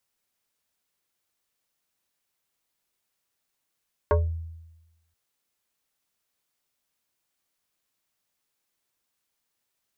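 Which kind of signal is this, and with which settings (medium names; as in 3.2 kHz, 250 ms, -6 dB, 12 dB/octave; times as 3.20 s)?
FM tone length 1.03 s, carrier 82 Hz, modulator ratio 6.19, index 2.1, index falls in 0.27 s exponential, decay 1.06 s, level -15.5 dB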